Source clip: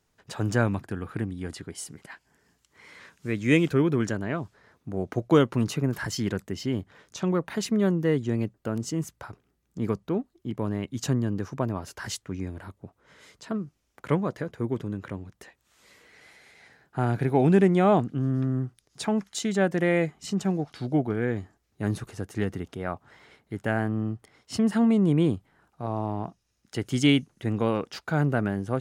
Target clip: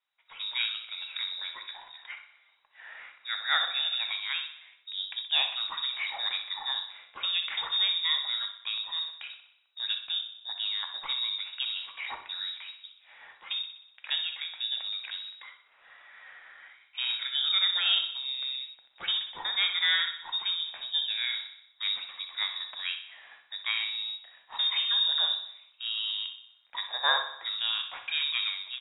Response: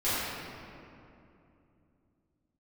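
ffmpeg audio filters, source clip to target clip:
-filter_complex "[0:a]dynaudnorm=f=130:g=5:m=11.5dB,lowpass=f=3.3k:t=q:w=0.5098,lowpass=f=3.3k:t=q:w=0.6013,lowpass=f=3.3k:t=q:w=0.9,lowpass=f=3.3k:t=q:w=2.563,afreqshift=-3900,acrossover=split=550 2300:gain=0.2 1 0.141[a][b][c];[a][b][c]amix=inputs=3:normalize=0,aecho=1:1:62|124|186|248|310|372|434:0.282|0.163|0.0948|0.055|0.0319|0.0185|0.0107,asplit=2[d][e];[1:a]atrim=start_sample=2205,atrim=end_sample=3969[f];[e][f]afir=irnorm=-1:irlink=0,volume=-14dB[g];[d][g]amix=inputs=2:normalize=0,volume=-6dB"

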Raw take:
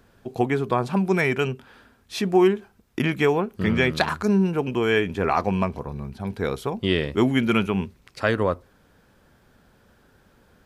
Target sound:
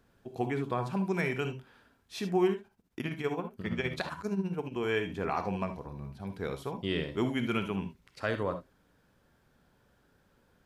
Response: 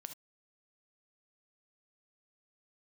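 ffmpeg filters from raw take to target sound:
-filter_complex "[0:a]asettb=1/sr,asplit=3[a][b][c];[a]atrim=end=2.534[d];[b]atrim=start=2.53:end=4.76,asetpts=PTS-STARTPTS,afade=t=in:d=0.004:c=qsin,afade=t=out:st=2.226:d=0.004:c=qsin,tremolo=f=15:d=0.72[e];[c]atrim=start=4.756[f];[d][e]acrossfade=d=0.004:c1=hsin:c2=qsin[g];[g][f]acrossfade=d=0.004:c1=qsin:c2=hsin[h];[1:a]atrim=start_sample=2205[i];[h][i]afir=irnorm=-1:irlink=0,volume=-5dB"

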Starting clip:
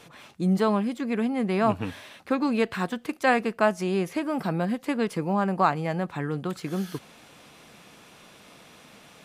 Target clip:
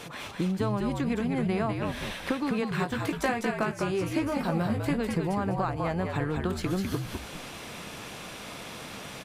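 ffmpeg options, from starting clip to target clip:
-filter_complex "[0:a]acompressor=threshold=-35dB:ratio=10,asettb=1/sr,asplit=3[a][b][c];[a]atrim=end=2.804[d];[b]atrim=start=2.8:end=5.01,asetpts=PTS-STARTPTS,afade=t=in:d=0.004:c=qsin,afade=t=out:st=2.206:d=0.004:c=qsin,asplit=2[e][f];[f]adelay=18,volume=-5.5dB[g];[e][g]amix=inputs=2:normalize=0,atrim=end_sample=97461[h];[c]atrim=start=5.006[i];[d][h]acrossfade=d=0.004:c1=hsin:c2=qsin[j];[j][i]acrossfade=d=0.004:c1=qsin:c2=hsin,asplit=5[k][l][m][n][o];[l]adelay=202,afreqshift=-65,volume=-4dB[p];[m]adelay=404,afreqshift=-130,volume=-14.2dB[q];[n]adelay=606,afreqshift=-195,volume=-24.3dB[r];[o]adelay=808,afreqshift=-260,volume=-34.5dB[s];[k][p][q][r][s]amix=inputs=5:normalize=0,volume=8.5dB"

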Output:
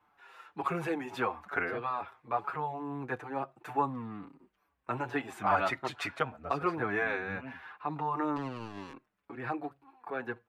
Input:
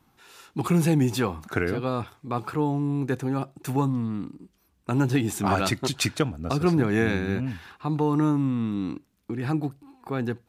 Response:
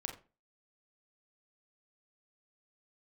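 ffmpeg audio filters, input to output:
-filter_complex "[0:a]acrossover=split=540 2400:gain=0.126 1 0.0794[a][b][c];[a][b][c]amix=inputs=3:normalize=0,asettb=1/sr,asplit=3[d][e][f];[d]atrim=end=8.364[g];[e]atrim=start=8.36:end=8.93,asetpts=PTS-STARTPTS,afade=t=in:d=0.004:c=qsin,afade=t=out:st=0.566:d=0.004:c=qsin,acrusher=bits=5:mix=0:aa=0.5[h];[f]atrim=start=8.926[i];[g][h]acrossfade=d=0.004:c1=hsin:c2=qsin[j];[j][i]acrossfade=d=0.004:c1=qsin:c2=hsin,asplit=2[k][l];[l]adelay=6.2,afreqshift=-2.2[m];[k][m]amix=inputs=2:normalize=1,volume=3.5dB"

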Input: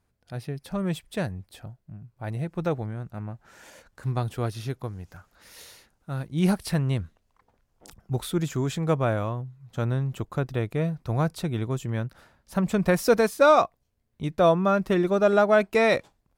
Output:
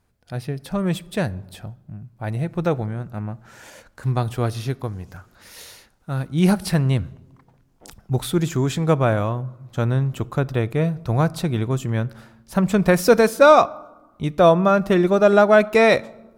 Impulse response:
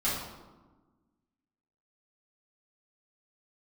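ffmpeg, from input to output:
-filter_complex "[0:a]asplit=2[a][b];[1:a]atrim=start_sample=2205,asetrate=48510,aresample=44100[c];[b][c]afir=irnorm=-1:irlink=0,volume=-27dB[d];[a][d]amix=inputs=2:normalize=0,volume=5.5dB"

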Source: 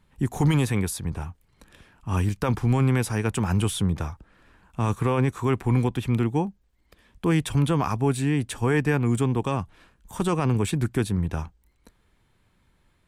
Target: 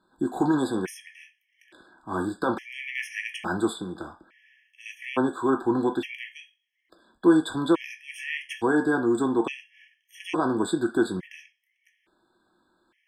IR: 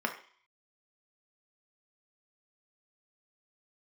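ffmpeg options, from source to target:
-filter_complex "[0:a]asettb=1/sr,asplit=3[a][b][c];[a]atrim=end=3.734[d];[b]atrim=start=3.73:end=4.86,asetpts=PTS-STARTPTS,afade=t=in:d=0.004:c=qsin,afade=t=out:st=1.126:d=0.004:c=qsin,acrossover=split=420|950|4300[e][f][g][h];[e]acompressor=threshold=-26dB:ratio=4[i];[f]acompressor=threshold=-46dB:ratio=4[j];[g]acompressor=threshold=-45dB:ratio=4[k];[h]acompressor=threshold=-45dB:ratio=4[l];[i][j][k][l]amix=inputs=4:normalize=0[m];[c]atrim=start=4.856[n];[d][m]acrossfade=d=0.004:c1=hsin:c2=qsin[o];[o][n]acrossfade=d=0.004:c1=qsin:c2=hsin[p];[1:a]atrim=start_sample=2205,asetrate=66150,aresample=44100[q];[p][q]afir=irnorm=-1:irlink=0,afftfilt=real='re*gt(sin(2*PI*0.58*pts/sr)*(1-2*mod(floor(b*sr/1024/1700),2)),0)':imag='im*gt(sin(2*PI*0.58*pts/sr)*(1-2*mod(floor(b*sr/1024/1700),2)),0)':win_size=1024:overlap=0.75"

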